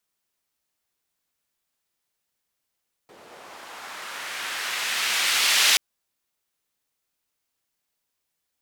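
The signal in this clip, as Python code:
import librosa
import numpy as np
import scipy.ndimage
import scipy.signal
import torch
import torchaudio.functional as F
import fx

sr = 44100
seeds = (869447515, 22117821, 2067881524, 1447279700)

y = fx.riser_noise(sr, seeds[0], length_s=2.68, colour='white', kind='bandpass', start_hz=380.0, end_hz=3000.0, q=1.0, swell_db=25.0, law='linear')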